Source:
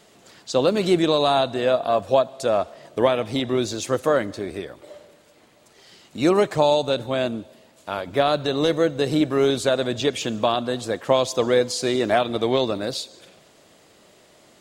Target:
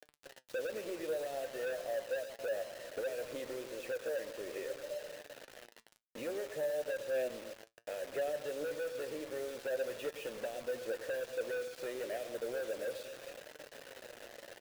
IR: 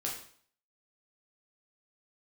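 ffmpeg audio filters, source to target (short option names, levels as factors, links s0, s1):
-filter_complex "[0:a]areverse,acompressor=mode=upward:threshold=0.01:ratio=2.5,areverse,bass=f=250:g=-3,treble=f=4000:g=-14,acompressor=threshold=0.0282:ratio=6,asplit=3[s0][s1][s2];[s0]bandpass=f=530:t=q:w=8,volume=1[s3];[s1]bandpass=f=1840:t=q:w=8,volume=0.501[s4];[s2]bandpass=f=2480:t=q:w=8,volume=0.355[s5];[s3][s4][s5]amix=inputs=3:normalize=0,lowshelf=f=100:g=5,asoftclip=type=hard:threshold=0.0106,asplit=2[s6][s7];[s7]adelay=113,lowpass=f=1400:p=1,volume=0.299,asplit=2[s8][s9];[s9]adelay=113,lowpass=f=1400:p=1,volume=0.32,asplit=2[s10][s11];[s11]adelay=113,lowpass=f=1400:p=1,volume=0.32[s12];[s8][s10][s12]amix=inputs=3:normalize=0[s13];[s6][s13]amix=inputs=2:normalize=0,acrusher=bits=8:mix=0:aa=0.000001,flanger=delay=6.6:depth=2.3:regen=67:speed=0.59:shape=sinusoidal,volume=2.99"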